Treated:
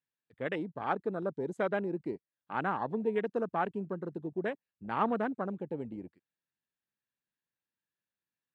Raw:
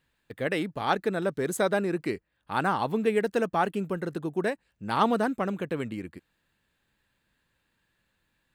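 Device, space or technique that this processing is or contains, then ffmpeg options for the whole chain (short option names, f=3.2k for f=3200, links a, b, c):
over-cleaned archive recording: -af "highpass=120,lowpass=6.5k,afwtdn=0.0224,volume=-6dB"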